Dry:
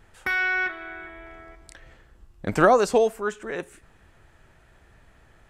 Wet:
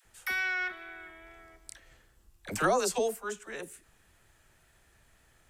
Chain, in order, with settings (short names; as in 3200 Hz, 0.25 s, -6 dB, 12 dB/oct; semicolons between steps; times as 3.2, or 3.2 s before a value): wow and flutter 22 cents; pre-emphasis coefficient 0.8; dispersion lows, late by 54 ms, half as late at 550 Hz; gain +3.5 dB